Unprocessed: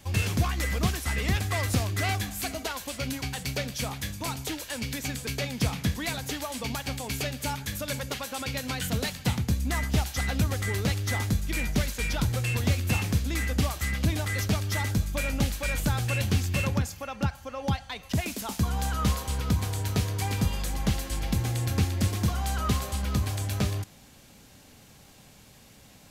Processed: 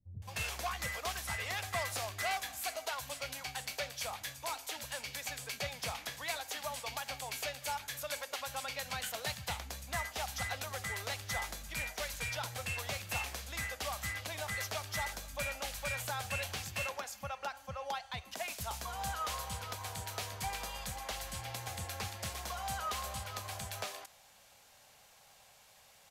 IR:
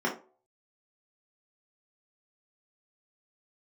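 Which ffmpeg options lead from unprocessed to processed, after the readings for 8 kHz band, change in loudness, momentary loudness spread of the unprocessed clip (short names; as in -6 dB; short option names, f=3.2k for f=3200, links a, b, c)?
-6.0 dB, -9.5 dB, 6 LU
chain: -filter_complex "[0:a]lowshelf=f=450:t=q:w=1.5:g=-12.5,acrossover=split=250[a][b];[b]adelay=220[c];[a][c]amix=inputs=2:normalize=0,volume=-6dB"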